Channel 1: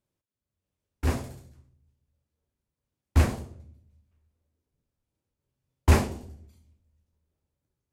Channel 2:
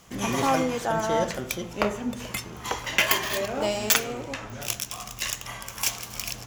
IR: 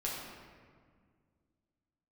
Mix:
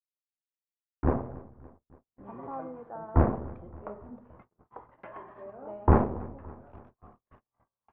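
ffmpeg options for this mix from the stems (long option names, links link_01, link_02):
-filter_complex "[0:a]aeval=exprs='if(lt(val(0),0),0.251*val(0),val(0))':channel_layout=same,acontrast=56,volume=2dB,asplit=2[link_01][link_02];[link_02]volume=-21.5dB[link_03];[1:a]adelay=2050,volume=-14dB[link_04];[link_03]aecho=0:1:284|568|852|1136|1420|1704|1988|2272|2556:1|0.58|0.336|0.195|0.113|0.0656|0.0381|0.0221|0.0128[link_05];[link_01][link_04][link_05]amix=inputs=3:normalize=0,lowpass=frequency=1200:width=0.5412,lowpass=frequency=1200:width=1.3066,agate=range=-37dB:threshold=-49dB:ratio=16:detection=peak,lowshelf=frequency=150:gain=-9"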